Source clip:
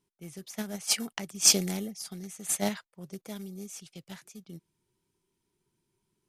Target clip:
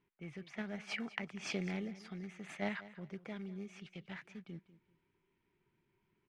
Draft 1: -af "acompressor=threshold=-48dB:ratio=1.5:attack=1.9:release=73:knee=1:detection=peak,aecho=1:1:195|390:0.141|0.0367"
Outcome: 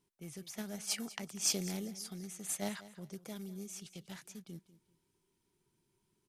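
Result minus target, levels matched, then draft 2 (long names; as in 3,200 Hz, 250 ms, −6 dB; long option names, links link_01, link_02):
2,000 Hz band −10.0 dB
-af "acompressor=threshold=-48dB:ratio=1.5:attack=1.9:release=73:knee=1:detection=peak,lowpass=frequency=2200:width_type=q:width=2.2,aecho=1:1:195|390:0.141|0.0367"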